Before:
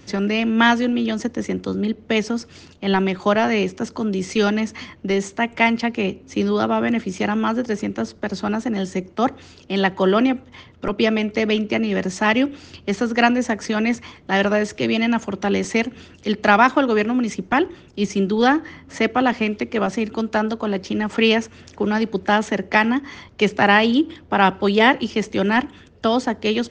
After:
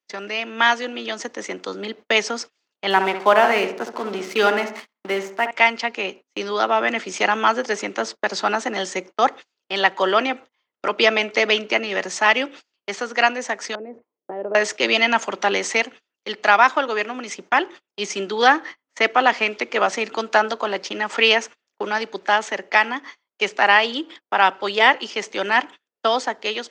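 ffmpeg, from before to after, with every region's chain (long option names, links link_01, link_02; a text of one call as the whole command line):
ffmpeg -i in.wav -filter_complex "[0:a]asettb=1/sr,asplit=3[link_01][link_02][link_03];[link_01]atrim=end=2.904[link_04];[link_02]atrim=start=2.9:end=5.51,asetpts=PTS-STARTPTS,afade=type=in:duration=0.004:curve=qsin,afade=type=out:start_time=2.606:duration=0.004:curve=qsin,aemphasis=mode=reproduction:type=75fm,aeval=exprs='sgn(val(0))*max(abs(val(0))-0.0106,0)':channel_layout=same,asplit=2[link_05][link_06];[link_06]adelay=67,lowpass=frequency=1700:poles=1,volume=-7dB,asplit=2[link_07][link_08];[link_08]adelay=67,lowpass=frequency=1700:poles=1,volume=0.51,asplit=2[link_09][link_10];[link_10]adelay=67,lowpass=frequency=1700:poles=1,volume=0.51,asplit=2[link_11][link_12];[link_12]adelay=67,lowpass=frequency=1700:poles=1,volume=0.51,asplit=2[link_13][link_14];[link_14]adelay=67,lowpass=frequency=1700:poles=1,volume=0.51,asplit=2[link_15][link_16];[link_16]adelay=67,lowpass=frequency=1700:poles=1,volume=0.51[link_17];[link_05][link_07][link_09][link_11][link_13][link_15][link_17]amix=inputs=7:normalize=0,atrim=end_sample=115101[link_18];[link_03]atrim=start=5.506[link_19];[link_04][link_18]acrossfade=duration=0.004:curve1=hsin:curve2=qsin[link_20];[link_20][link_19]acrossfade=duration=0.004:curve1=qsin:curve2=hsin,asettb=1/sr,asplit=3[link_21][link_22][link_23];[link_21]atrim=end=13.754[link_24];[link_22]atrim=start=13.75:end=14.55,asetpts=PTS-STARTPTS,afade=type=in:duration=0.004:curve=qsin,afade=type=out:start_time=0.796:duration=0.004:curve=qsin,acompressor=threshold=-23dB:ratio=5:attack=3.2:release=140:knee=1:detection=peak,lowpass=frequency=460:width_type=q:width=1.8[link_25];[link_23]atrim=start=14.546[link_26];[link_24][link_25]acrossfade=duration=0.004:curve1=hsin:curve2=qsin[link_27];[link_27][link_26]acrossfade=duration=0.004:curve1=qsin:curve2=hsin,agate=range=-35dB:threshold=-32dB:ratio=16:detection=peak,highpass=630,dynaudnorm=framelen=330:gausssize=5:maxgain=11.5dB,volume=-1dB" out.wav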